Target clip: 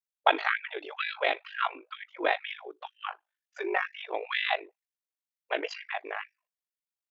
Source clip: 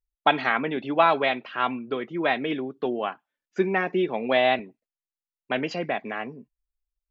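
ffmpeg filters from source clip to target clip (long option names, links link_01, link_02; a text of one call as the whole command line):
ffmpeg -i in.wav -af "aeval=exprs='val(0)*sin(2*PI*25*n/s)':channel_layout=same,afftfilt=real='re*gte(b*sr/1024,290*pow(1600/290,0.5+0.5*sin(2*PI*2.1*pts/sr)))':imag='im*gte(b*sr/1024,290*pow(1600/290,0.5+0.5*sin(2*PI*2.1*pts/sr)))':win_size=1024:overlap=0.75" out.wav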